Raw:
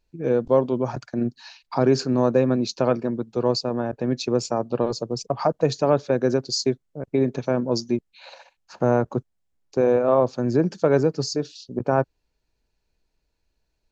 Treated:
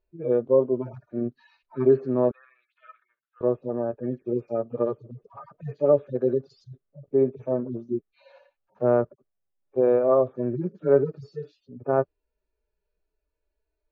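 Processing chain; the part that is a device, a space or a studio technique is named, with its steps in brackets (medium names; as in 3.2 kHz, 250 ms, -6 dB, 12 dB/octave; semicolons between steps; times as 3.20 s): harmonic-percussive separation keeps harmonic; 2.31–3.41 s: elliptic band-pass 1.4–3.6 kHz, stop band 70 dB; inside a cardboard box (low-pass 2.8 kHz 12 dB/octave; small resonant body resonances 410/580/1200 Hz, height 9 dB, ringing for 25 ms); trim -6.5 dB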